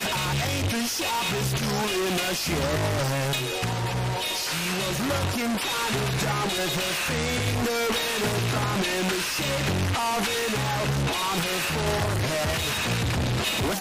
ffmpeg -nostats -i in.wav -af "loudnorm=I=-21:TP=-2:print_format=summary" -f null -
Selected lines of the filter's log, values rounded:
Input Integrated:    -25.2 LUFS
Input True Peak:     -20.0 dBTP
Input LRA:             0.8 LU
Input Threshold:     -35.2 LUFS